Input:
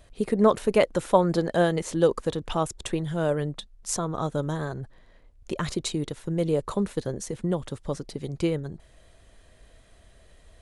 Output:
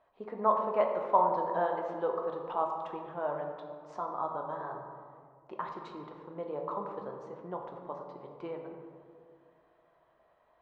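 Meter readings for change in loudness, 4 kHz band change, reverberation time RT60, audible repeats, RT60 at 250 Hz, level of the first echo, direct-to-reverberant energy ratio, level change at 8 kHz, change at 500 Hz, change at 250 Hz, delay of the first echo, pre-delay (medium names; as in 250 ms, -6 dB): -7.5 dB, -22.0 dB, 2.1 s, no echo, 2.3 s, no echo, 1.5 dB, under -35 dB, -8.0 dB, -16.5 dB, no echo, 3 ms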